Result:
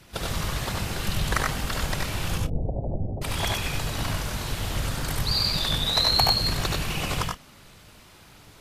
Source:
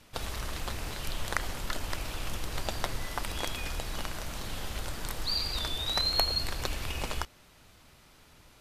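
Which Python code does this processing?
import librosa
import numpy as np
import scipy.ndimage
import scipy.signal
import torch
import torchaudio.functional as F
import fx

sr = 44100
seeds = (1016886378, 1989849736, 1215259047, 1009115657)

y = fx.steep_lowpass(x, sr, hz=660.0, slope=48, at=(2.37, 3.22))
y = fx.whisperise(y, sr, seeds[0])
y = fx.echo_multitap(y, sr, ms=(74, 94, 124), db=(-4.5, -3.0, -17.0))
y = F.gain(torch.from_numpy(y), 4.5).numpy()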